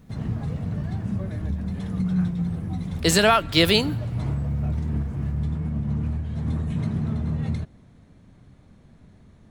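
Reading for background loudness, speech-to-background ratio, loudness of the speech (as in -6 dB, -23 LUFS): -28.0 LUFS, 8.5 dB, -19.5 LUFS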